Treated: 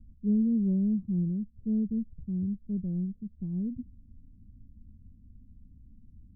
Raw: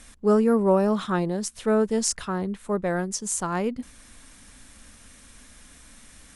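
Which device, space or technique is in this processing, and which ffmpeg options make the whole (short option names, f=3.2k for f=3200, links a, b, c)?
the neighbour's flat through the wall: -af "lowpass=f=220:w=0.5412,lowpass=f=220:w=1.3066,equalizer=f=92:t=o:w=0.69:g=7"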